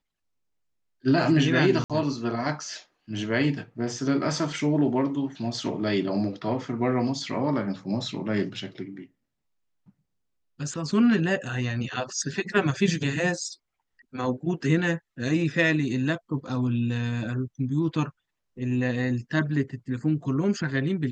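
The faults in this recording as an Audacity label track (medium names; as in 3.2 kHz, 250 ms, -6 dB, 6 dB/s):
1.840000	1.900000	dropout 57 ms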